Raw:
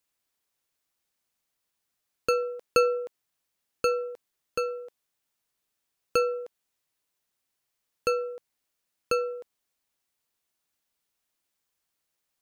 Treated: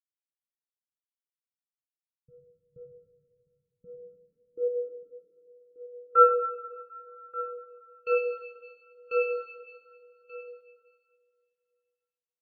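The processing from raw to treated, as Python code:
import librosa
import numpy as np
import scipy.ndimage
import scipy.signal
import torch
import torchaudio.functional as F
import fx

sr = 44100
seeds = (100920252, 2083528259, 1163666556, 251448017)

p1 = fx.dereverb_blind(x, sr, rt60_s=2.0)
p2 = fx.level_steps(p1, sr, step_db=19)
p3 = p1 + (p2 * librosa.db_to_amplitude(2.0))
p4 = fx.transient(p3, sr, attack_db=-8, sustain_db=4)
p5 = fx.filter_sweep_lowpass(p4, sr, from_hz=140.0, to_hz=3200.0, start_s=3.52, end_s=7.28, q=4.2)
p6 = p5 + fx.echo_single(p5, sr, ms=1183, db=-11.5, dry=0)
p7 = fx.rev_plate(p6, sr, seeds[0], rt60_s=3.5, hf_ratio=1.0, predelay_ms=0, drr_db=-1.0)
y = fx.spectral_expand(p7, sr, expansion=1.5)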